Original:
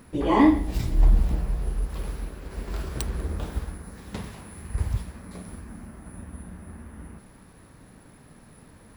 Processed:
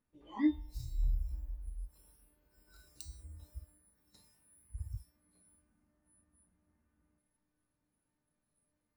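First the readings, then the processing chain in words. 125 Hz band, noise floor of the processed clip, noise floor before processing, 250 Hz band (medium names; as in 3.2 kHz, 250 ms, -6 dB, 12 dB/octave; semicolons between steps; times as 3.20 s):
-16.5 dB, -85 dBFS, -52 dBFS, -14.0 dB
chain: feedback comb 300 Hz, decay 0.99 s, mix 90%; spectral noise reduction 21 dB; trim +4 dB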